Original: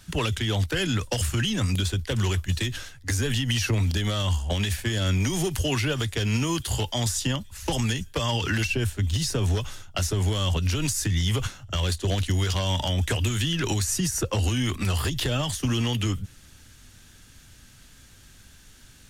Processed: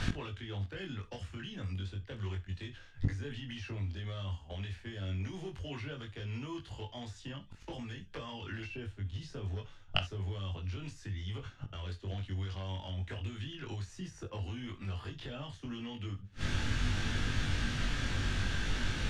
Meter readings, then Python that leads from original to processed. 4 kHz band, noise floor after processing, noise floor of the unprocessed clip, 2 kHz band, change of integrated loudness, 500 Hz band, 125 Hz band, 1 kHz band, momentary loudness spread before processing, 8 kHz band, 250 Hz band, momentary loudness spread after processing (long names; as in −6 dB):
−14.0 dB, −55 dBFS, −52 dBFS, −10.0 dB, −13.5 dB, −14.5 dB, −12.5 dB, −12.5 dB, 4 LU, −22.0 dB, −13.0 dB, 9 LU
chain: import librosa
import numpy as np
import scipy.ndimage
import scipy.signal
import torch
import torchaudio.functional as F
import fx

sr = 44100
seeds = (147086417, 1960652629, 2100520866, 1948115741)

y = scipy.signal.sosfilt(scipy.signal.butter(2, 3200.0, 'lowpass', fs=sr, output='sos'), x)
y = fx.gate_flip(y, sr, shuts_db=-35.0, range_db=-35)
y = fx.doubler(y, sr, ms=21.0, db=-2.5)
y = fx.rev_gated(y, sr, seeds[0], gate_ms=90, shape='flat', drr_db=12.0)
y = y * librosa.db_to_amplitude(17.0)